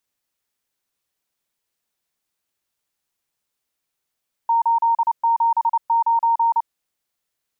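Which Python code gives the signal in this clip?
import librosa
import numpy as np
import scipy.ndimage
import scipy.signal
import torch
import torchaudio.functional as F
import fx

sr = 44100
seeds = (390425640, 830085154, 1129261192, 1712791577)

y = fx.morse(sr, text='879', wpm=29, hz=924.0, level_db=-14.0)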